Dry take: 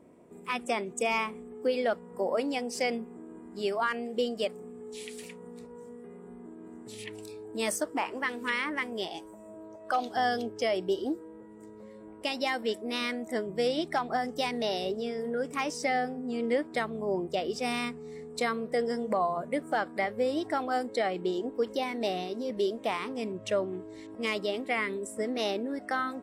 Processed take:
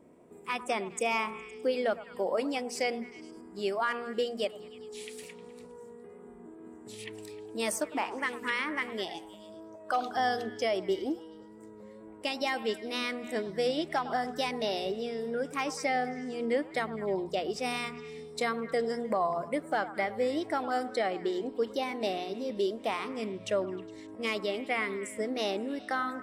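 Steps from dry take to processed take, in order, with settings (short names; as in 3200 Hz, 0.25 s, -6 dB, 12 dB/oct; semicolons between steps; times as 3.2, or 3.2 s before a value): wow and flutter 24 cents; notches 60/120/180/240 Hz; delay with a stepping band-pass 0.103 s, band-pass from 1000 Hz, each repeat 0.7 oct, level -11 dB; gain -1 dB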